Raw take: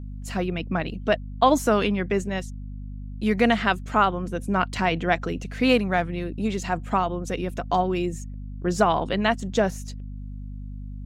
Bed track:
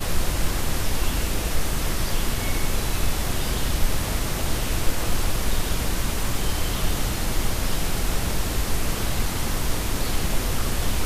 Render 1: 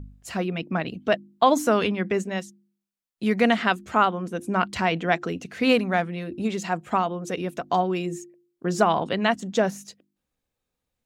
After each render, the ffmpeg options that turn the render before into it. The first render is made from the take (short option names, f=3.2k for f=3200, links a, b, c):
-af "bandreject=f=50:t=h:w=4,bandreject=f=100:t=h:w=4,bandreject=f=150:t=h:w=4,bandreject=f=200:t=h:w=4,bandreject=f=250:t=h:w=4,bandreject=f=300:t=h:w=4,bandreject=f=350:t=h:w=4"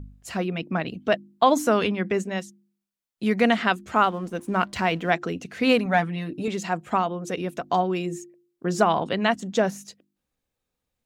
-filter_complex "[0:a]asettb=1/sr,asplit=3[a][b][c];[a]atrim=end=3.954[d];[b]atrim=start=3.95:end=5.11,asetpts=PTS-STARTPTS,afade=t=in:d=0.004:c=qsin,afade=t=out:st=1.156:d=0.004:c=qsin,aeval=exprs='sgn(val(0))*max(abs(val(0))-0.00299,0)':c=same[e];[c]atrim=start=5.106[f];[d][e]acrossfade=d=0.004:c1=hsin:c2=qsin[g];[g][f]acrossfade=d=0.004:c1=qsin:c2=hsin,asettb=1/sr,asplit=3[h][i][j];[h]atrim=end=5.854[k];[i]atrim=start=5.85:end=6.48,asetpts=PTS-STARTPTS,afade=t=in:d=0.004:c=qsin,afade=t=out:st=0.626:d=0.004:c=qsin,aecho=1:1:6.8:0.65,atrim=end_sample=27783[l];[j]atrim=start=6.476[m];[k][l]acrossfade=d=0.004:c1=hsin:c2=qsin[n];[n][m]acrossfade=d=0.004:c1=qsin:c2=hsin"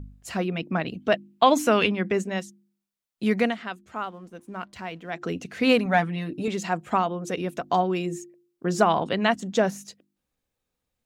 -filter_complex "[0:a]asettb=1/sr,asplit=3[a][b][c];[a]atrim=end=1.144[d];[b]atrim=start=1.14:end=1.86,asetpts=PTS-STARTPTS,afade=t=in:d=0.004:c=qsin,afade=t=out:st=0.716:d=0.004:c=qsin,equalizer=f=2.6k:w=2.1:g=8[e];[c]atrim=start=1.856[f];[d][e]acrossfade=d=0.004:c1=hsin:c2=qsin[g];[g][f]acrossfade=d=0.004:c1=qsin:c2=hsin,asplit=3[h][i][j];[h]atrim=end=3.55,asetpts=PTS-STARTPTS,afade=t=out:st=3.37:d=0.18:silence=0.251189[k];[i]atrim=start=3.55:end=5.12,asetpts=PTS-STARTPTS,volume=-12dB[l];[j]atrim=start=5.12,asetpts=PTS-STARTPTS,afade=t=in:d=0.18:silence=0.251189[m];[k][l][m]concat=n=3:v=0:a=1"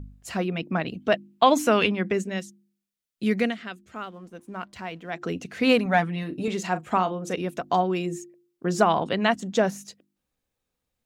-filter_complex "[0:a]asettb=1/sr,asplit=3[a][b][c];[a]atrim=end=2.134[d];[b]atrim=start=2.13:end=4.16,asetpts=PTS-STARTPTS,afade=t=in:d=0.004:c=qsin,afade=t=out:st=2.026:d=0.004:c=qsin,equalizer=f=900:t=o:w=0.98:g=-8[e];[c]atrim=start=4.156[f];[d][e]acrossfade=d=0.004:c1=hsin:c2=qsin[g];[g][f]acrossfade=d=0.004:c1=qsin:c2=hsin,asettb=1/sr,asplit=3[h][i][j];[h]atrim=end=6.194[k];[i]atrim=start=6.19:end=7.36,asetpts=PTS-STARTPTS,afade=t=in:d=0.004:c=qsin,afade=t=out:st=1.166:d=0.004:c=qsin,asplit=2[l][m];[m]adelay=38,volume=-13dB[n];[l][n]amix=inputs=2:normalize=0,atrim=end_sample=51597[o];[j]atrim=start=7.356[p];[k][o]acrossfade=d=0.004:c1=hsin:c2=qsin[q];[q][p]acrossfade=d=0.004:c1=qsin:c2=hsin"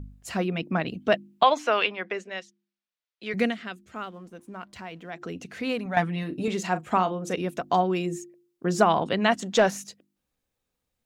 -filter_complex "[0:a]asettb=1/sr,asplit=3[a][b][c];[a]atrim=end=1.434[d];[b]atrim=start=1.43:end=3.34,asetpts=PTS-STARTPTS,afade=t=in:d=0.004:c=qsin,afade=t=out:st=1.906:d=0.004:c=qsin,acrossover=split=460 5300:gain=0.1 1 0.0631[e][f][g];[e][f][g]amix=inputs=3:normalize=0[h];[c]atrim=start=3.336[i];[d][h]acrossfade=d=0.004:c1=hsin:c2=qsin[j];[j][i]acrossfade=d=0.004:c1=qsin:c2=hsin,asettb=1/sr,asplit=3[k][l][m];[k]atrim=end=4.224[n];[l]atrim=start=4.22:end=5.97,asetpts=PTS-STARTPTS,afade=t=in:d=0.004:c=qsin,afade=t=out:st=1.746:d=0.004:c=qsin,acompressor=threshold=-41dB:ratio=1.5:attack=3.2:release=140:knee=1:detection=peak[o];[m]atrim=start=5.966[p];[n][o]acrossfade=d=0.004:c1=hsin:c2=qsin[q];[q][p]acrossfade=d=0.004:c1=qsin:c2=hsin,asettb=1/sr,asplit=3[r][s][t];[r]atrim=end=9.324[u];[s]atrim=start=9.32:end=9.84,asetpts=PTS-STARTPTS,afade=t=in:d=0.004:c=qsin,afade=t=out:st=0.516:d=0.004:c=qsin,asplit=2[v][w];[w]highpass=f=720:p=1,volume=12dB,asoftclip=type=tanh:threshold=-9dB[x];[v][x]amix=inputs=2:normalize=0,lowpass=f=6.3k:p=1,volume=-6dB[y];[t]atrim=start=9.836[z];[u][y]acrossfade=d=0.004:c1=hsin:c2=qsin[aa];[aa][z]acrossfade=d=0.004:c1=qsin:c2=hsin"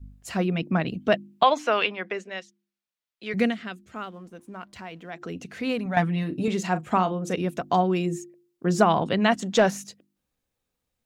-af "adynamicequalizer=threshold=0.0126:dfrequency=130:dqfactor=0.7:tfrequency=130:tqfactor=0.7:attack=5:release=100:ratio=0.375:range=2.5:mode=boostabove:tftype=bell"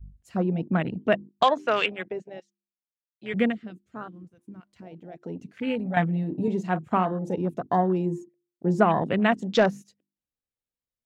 -af "afwtdn=0.0251,equalizer=f=920:w=1.5:g=-2"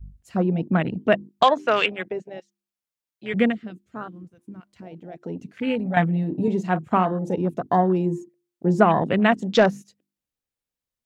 -af "volume=3.5dB"